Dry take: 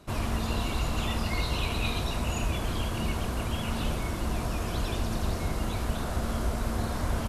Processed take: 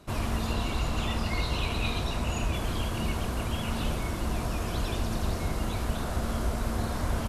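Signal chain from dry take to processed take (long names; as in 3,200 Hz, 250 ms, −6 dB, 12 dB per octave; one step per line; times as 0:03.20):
0:00.52–0:02.54: high-shelf EQ 12,000 Hz −8.5 dB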